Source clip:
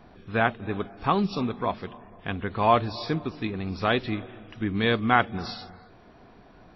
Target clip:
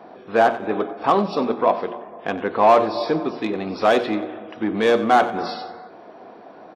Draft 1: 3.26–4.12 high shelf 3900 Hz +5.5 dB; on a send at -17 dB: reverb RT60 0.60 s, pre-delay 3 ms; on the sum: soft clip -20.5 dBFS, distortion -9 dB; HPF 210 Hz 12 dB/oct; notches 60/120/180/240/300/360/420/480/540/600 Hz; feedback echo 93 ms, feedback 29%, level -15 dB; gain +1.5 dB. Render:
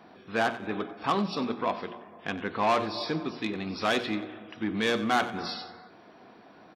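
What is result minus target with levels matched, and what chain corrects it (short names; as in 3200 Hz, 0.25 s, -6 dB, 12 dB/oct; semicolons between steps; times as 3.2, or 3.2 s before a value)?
500 Hz band -3.0 dB
3.26–4.12 high shelf 3900 Hz +5.5 dB; on a send at -17 dB: reverb RT60 0.60 s, pre-delay 3 ms; on the sum: soft clip -20.5 dBFS, distortion -9 dB; HPF 210 Hz 12 dB/oct; bell 580 Hz +13.5 dB 2.3 oct; notches 60/120/180/240/300/360/420/480/540/600 Hz; feedback echo 93 ms, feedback 29%, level -15 dB; gain +1.5 dB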